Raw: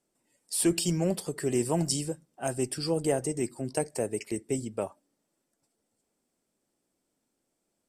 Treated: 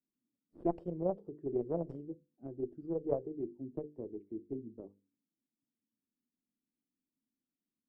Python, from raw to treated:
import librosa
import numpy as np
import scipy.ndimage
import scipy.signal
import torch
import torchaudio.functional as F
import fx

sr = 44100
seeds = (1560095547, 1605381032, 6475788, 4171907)

y = fx.hum_notches(x, sr, base_hz=50, count=10)
y = fx.cheby_harmonics(y, sr, harmonics=(3, 4, 6, 8), levels_db=(-13, -36, -14, -19), full_scale_db=-12.0)
y = fx.envelope_lowpass(y, sr, base_hz=250.0, top_hz=1300.0, q=3.4, full_db=-21.0, direction='up')
y = y * 10.0 ** (-6.5 / 20.0)